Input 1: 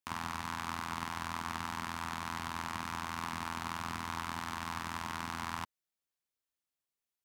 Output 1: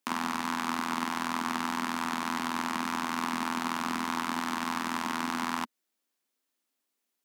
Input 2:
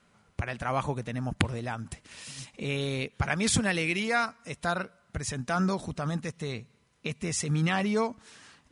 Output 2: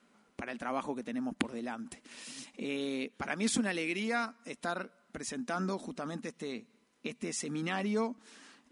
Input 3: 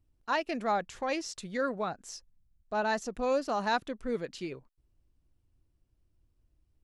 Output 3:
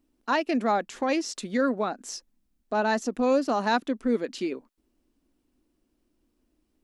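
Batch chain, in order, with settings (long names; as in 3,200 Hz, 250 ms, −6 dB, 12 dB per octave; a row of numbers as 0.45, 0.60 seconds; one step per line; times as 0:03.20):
low shelf with overshoot 170 Hz −12.5 dB, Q 3
in parallel at −2.5 dB: downward compressor, threshold −38 dBFS
on the sum: normalise the peak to −12 dBFS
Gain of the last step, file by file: +3.5, −8.0, +2.5 decibels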